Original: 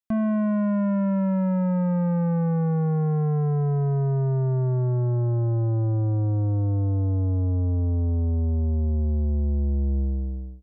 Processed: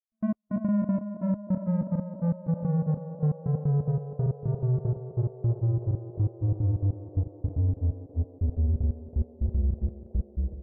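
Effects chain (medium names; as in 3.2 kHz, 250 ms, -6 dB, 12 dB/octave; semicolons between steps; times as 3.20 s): low-pass 1.5 kHz 6 dB/octave; bass shelf 170 Hz +9.5 dB; peak limiter -19.5 dBFS, peak gain reduction 7 dB; trance gate "...x..x.xx.x" 182 bpm -60 dB; granulator, spray 26 ms, pitch spread up and down by 0 st; band-passed feedback delay 325 ms, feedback 85%, band-pass 520 Hz, level -6 dB; Vorbis 96 kbps 16 kHz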